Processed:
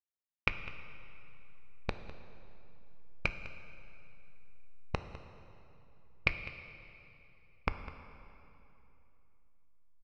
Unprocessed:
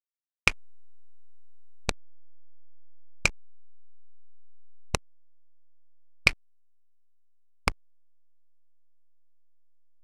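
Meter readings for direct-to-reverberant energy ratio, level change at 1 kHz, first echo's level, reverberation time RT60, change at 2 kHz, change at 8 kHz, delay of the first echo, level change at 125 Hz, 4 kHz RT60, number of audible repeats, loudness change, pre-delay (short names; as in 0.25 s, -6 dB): 8.0 dB, -6.0 dB, -16.5 dB, 3.0 s, -8.5 dB, under -25 dB, 0.203 s, -4.0 dB, 2.4 s, 1, -10.5 dB, 10 ms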